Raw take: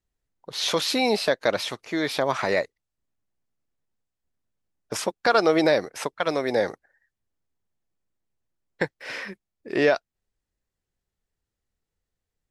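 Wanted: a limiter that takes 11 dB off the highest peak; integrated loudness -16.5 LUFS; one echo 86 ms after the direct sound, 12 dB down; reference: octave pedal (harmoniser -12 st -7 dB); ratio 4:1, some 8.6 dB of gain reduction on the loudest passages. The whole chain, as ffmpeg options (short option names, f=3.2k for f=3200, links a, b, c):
-filter_complex "[0:a]acompressor=threshold=-25dB:ratio=4,alimiter=limit=-21.5dB:level=0:latency=1,aecho=1:1:86:0.251,asplit=2[a][b];[b]asetrate=22050,aresample=44100,atempo=2,volume=-7dB[c];[a][c]amix=inputs=2:normalize=0,volume=16.5dB"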